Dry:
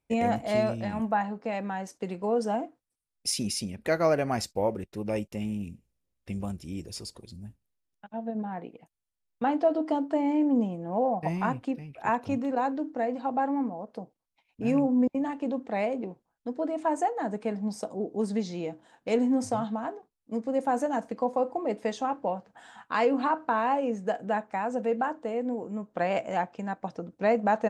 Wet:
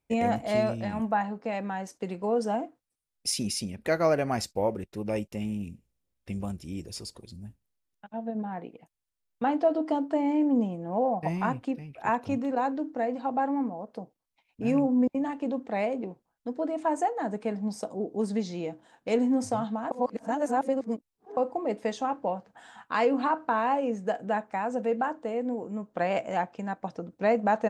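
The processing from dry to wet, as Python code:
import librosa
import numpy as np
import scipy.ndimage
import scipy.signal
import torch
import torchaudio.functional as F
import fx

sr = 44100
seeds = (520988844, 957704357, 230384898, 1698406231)

y = fx.edit(x, sr, fx.reverse_span(start_s=19.91, length_s=1.46), tone=tone)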